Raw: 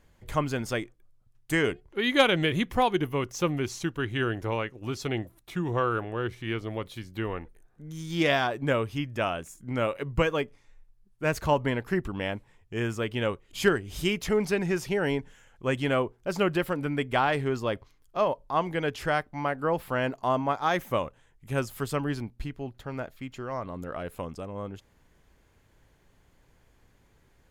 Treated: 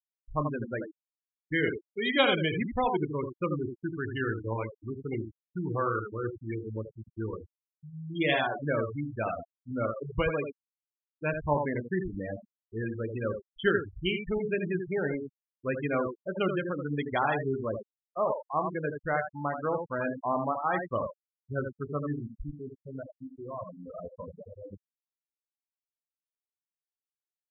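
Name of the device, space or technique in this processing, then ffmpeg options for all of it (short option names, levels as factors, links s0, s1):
slapback doubling: -filter_complex "[0:a]asplit=3[s0][s1][s2];[s1]adelay=27,volume=0.355[s3];[s2]adelay=82,volume=0.562[s4];[s0][s3][s4]amix=inputs=3:normalize=0,asettb=1/sr,asplit=3[s5][s6][s7];[s5]atrim=end=1.834[s8];[s6]atrim=start=1.83:end=3.04,asetpts=PTS-STARTPTS,afade=t=in:d=0.004:c=qsin,afade=t=out:st=1.206:d=0.004:c=qsin,equalizer=f=4500:w=0.73:g=-2.5[s9];[s7]atrim=start=3.036[s10];[s8][s9]acrossfade=d=0.004:c1=hsin:c2=qsin[s11];[s11][s10]acrossfade=d=0.004:c1=qsin:c2=hsin,asplit=2[s12][s13];[s13]adelay=128.3,volume=0.0316,highshelf=f=4000:g=-2.89[s14];[s12][s14]amix=inputs=2:normalize=0,afftfilt=real='re*gte(hypot(re,im),0.0891)':imag='im*gte(hypot(re,im),0.0891)':win_size=1024:overlap=0.75,aemphasis=mode=production:type=75fm,volume=0.668"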